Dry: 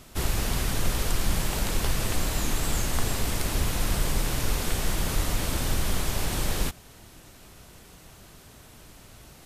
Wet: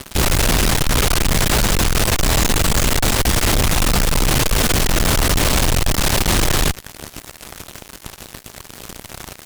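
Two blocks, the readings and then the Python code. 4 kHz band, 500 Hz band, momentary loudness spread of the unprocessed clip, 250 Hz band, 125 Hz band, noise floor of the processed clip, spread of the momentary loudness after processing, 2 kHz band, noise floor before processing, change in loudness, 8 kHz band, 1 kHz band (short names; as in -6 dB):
+13.0 dB, +12.0 dB, 1 LU, +11.5 dB, +10.5 dB, -42 dBFS, 19 LU, +13.0 dB, -51 dBFS, +12.0 dB, +12.0 dB, +12.5 dB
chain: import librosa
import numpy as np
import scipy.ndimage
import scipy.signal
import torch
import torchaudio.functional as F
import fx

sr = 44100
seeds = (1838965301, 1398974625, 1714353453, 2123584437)

y = fx.tracing_dist(x, sr, depth_ms=0.1)
y = fx.fuzz(y, sr, gain_db=40.0, gate_db=-45.0)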